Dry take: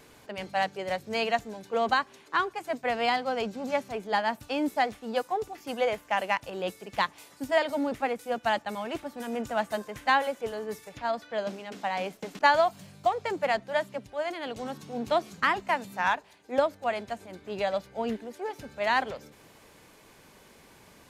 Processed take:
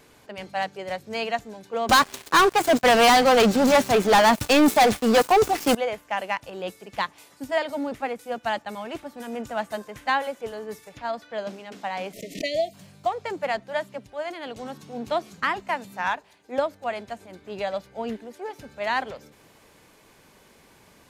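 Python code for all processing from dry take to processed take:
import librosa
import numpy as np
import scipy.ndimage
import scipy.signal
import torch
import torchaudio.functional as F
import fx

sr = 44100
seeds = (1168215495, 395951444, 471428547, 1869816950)

y = fx.chain(x, sr, fx.median_filter(points=3),
    fx.high_shelf(hz=5700.0, db=8.0),
    fx.leveller(passes=5), at=(1.89, 5.75))
y = fx.chain(y, sr, fx.brickwall_bandstop(low_hz=700.0, high_hz=1800.0),
    fx.pre_swell(db_per_s=120.0), at=(12.13, 12.74))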